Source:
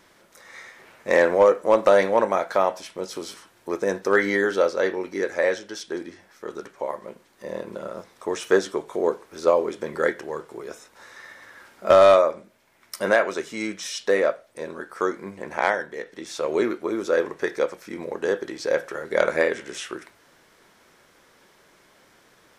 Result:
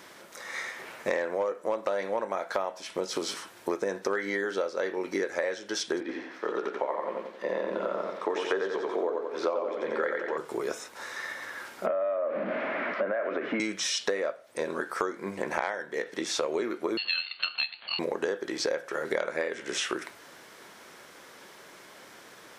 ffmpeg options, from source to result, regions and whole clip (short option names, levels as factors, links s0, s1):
-filter_complex "[0:a]asettb=1/sr,asplit=3[s0][s1][s2];[s0]atrim=end=6.004[s3];[s1]atrim=start=6:end=10.38,asetpts=PTS-STARTPTS,afade=t=in:d=0.004:c=qsin,afade=t=out:st=4.376:d=0.004:c=qsin,acrossover=split=210 4200:gain=0.2 1 0.0891[s4][s5][s6];[s4][s5][s6]amix=inputs=3:normalize=0,bandreject=f=60:t=h:w=6,bandreject=f=120:t=h:w=6,bandreject=f=180:t=h:w=6,bandreject=f=240:t=h:w=6,bandreject=f=300:t=h:w=6,bandreject=f=360:t=h:w=6,bandreject=f=420:t=h:w=6,bandreject=f=480:t=h:w=6,bandreject=f=540:t=h:w=6,bandreject=f=600:t=h:w=6,aecho=1:1:89|178|267|356|445:0.708|0.29|0.119|0.0488|0.02,atrim=end_sample=193158[s7];[s2]atrim=start=10.376[s8];[s3][s7]acrossfade=d=0.004:c1=hsin:c2=qsin[s9];[s9][s8]acrossfade=d=0.004:c1=qsin:c2=hsin,asettb=1/sr,asplit=3[s10][s11][s12];[s10]atrim=end=11.864[s13];[s11]atrim=start=11.86:end=13.6,asetpts=PTS-STARTPTS,afade=t=in:d=0.004:c=qsin,afade=t=out:st=1.736:d=0.004:c=qsin,aeval=exprs='val(0)+0.5*0.0355*sgn(val(0))':c=same,acompressor=threshold=0.0562:ratio=6:attack=3.2:release=140:knee=1:detection=peak,highpass=f=190:w=0.5412,highpass=f=190:w=1.3066,equalizer=f=270:t=q:w=4:g=5,equalizer=f=390:t=q:w=4:g=-4,equalizer=f=600:t=q:w=4:g=7,equalizer=f=910:t=q:w=4:g=-7,lowpass=f=2100:w=0.5412,lowpass=f=2100:w=1.3066[s14];[s12]atrim=start=13.596[s15];[s13][s14]acrossfade=d=0.004:c1=hsin:c2=qsin[s16];[s16][s15]acrossfade=d=0.004:c1=qsin:c2=hsin,asettb=1/sr,asplit=3[s17][s18][s19];[s17]atrim=end=16.974[s20];[s18]atrim=start=16.97:end=17.99,asetpts=PTS-STARTPTS,afade=t=in:d=0.004:c=qsin,afade=t=out:st=1.016:d=0.004:c=qsin,lowpass=f=3300:t=q:w=0.5098,lowpass=f=3300:t=q:w=0.6013,lowpass=f=3300:t=q:w=0.9,lowpass=f=3300:t=q:w=2.563,afreqshift=-3900,aeval=exprs='val(0)*sin(2*PI*770*n/s)':c=same[s21];[s19]atrim=start=17.986[s22];[s20][s21]acrossfade=d=0.004:c1=hsin:c2=qsin[s23];[s23][s22]acrossfade=d=0.004:c1=qsin:c2=hsin,acrossover=split=8200[s24][s25];[s25]acompressor=threshold=0.00158:ratio=4:attack=1:release=60[s26];[s24][s26]amix=inputs=2:normalize=0,highpass=f=220:p=1,acompressor=threshold=0.0224:ratio=12,volume=2.24"